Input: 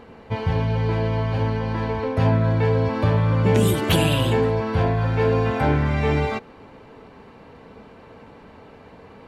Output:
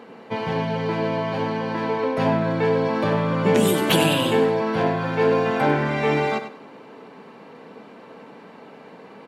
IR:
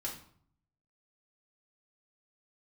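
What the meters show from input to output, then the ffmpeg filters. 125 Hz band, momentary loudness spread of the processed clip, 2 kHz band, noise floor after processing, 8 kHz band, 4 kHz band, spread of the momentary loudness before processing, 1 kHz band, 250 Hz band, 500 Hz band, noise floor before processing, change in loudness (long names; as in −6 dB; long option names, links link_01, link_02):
−7.5 dB, 7 LU, +2.5 dB, −45 dBFS, +2.5 dB, +2.5 dB, 6 LU, +2.5 dB, +1.0 dB, +2.0 dB, −46 dBFS, −0.5 dB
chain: -filter_complex "[0:a]highpass=frequency=170:width=0.5412,highpass=frequency=170:width=1.3066,asplit=2[link_01][link_02];[link_02]aecho=0:1:97|194|291:0.316|0.0727|0.0167[link_03];[link_01][link_03]amix=inputs=2:normalize=0,volume=2dB"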